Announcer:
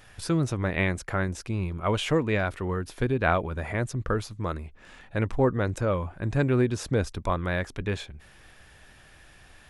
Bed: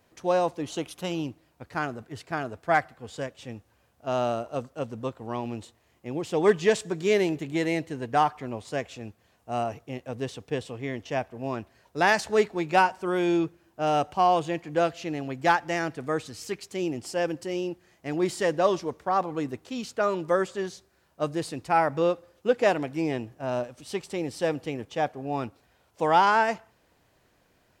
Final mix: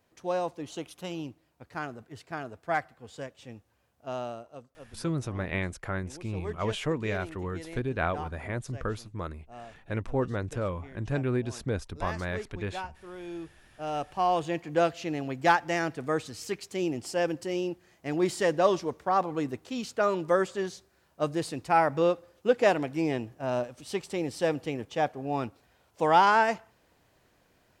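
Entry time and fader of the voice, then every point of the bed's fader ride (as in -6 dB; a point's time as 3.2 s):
4.75 s, -5.5 dB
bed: 4.03 s -6 dB
4.72 s -17 dB
13.2 s -17 dB
14.6 s -0.5 dB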